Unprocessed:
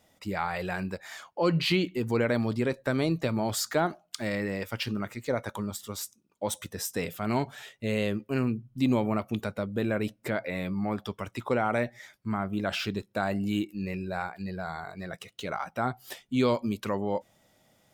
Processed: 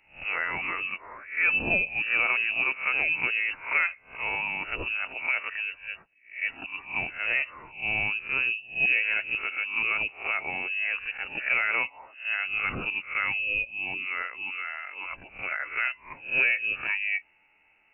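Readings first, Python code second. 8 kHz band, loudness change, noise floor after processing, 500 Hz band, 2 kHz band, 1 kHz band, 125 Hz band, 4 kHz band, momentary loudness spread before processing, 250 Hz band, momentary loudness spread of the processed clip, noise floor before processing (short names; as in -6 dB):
under -40 dB, +4.0 dB, -63 dBFS, -13.0 dB, +12.5 dB, -3.0 dB, -16.0 dB, -1.5 dB, 10 LU, -17.5 dB, 10 LU, -69 dBFS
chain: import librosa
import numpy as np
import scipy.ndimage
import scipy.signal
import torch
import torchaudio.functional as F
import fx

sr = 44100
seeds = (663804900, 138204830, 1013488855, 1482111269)

y = fx.spec_swells(x, sr, rise_s=0.37)
y = fx.freq_invert(y, sr, carrier_hz=2800)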